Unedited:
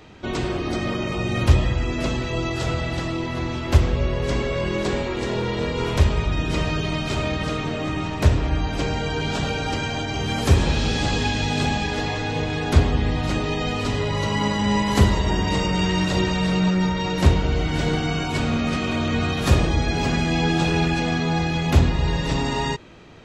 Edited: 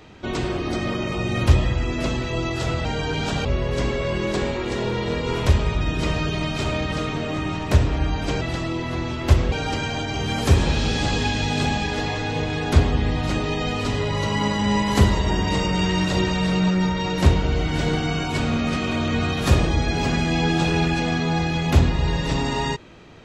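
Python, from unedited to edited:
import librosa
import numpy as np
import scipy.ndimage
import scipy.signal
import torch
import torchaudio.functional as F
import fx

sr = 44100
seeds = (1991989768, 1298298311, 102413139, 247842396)

y = fx.edit(x, sr, fx.swap(start_s=2.85, length_s=1.11, other_s=8.92, other_length_s=0.6), tone=tone)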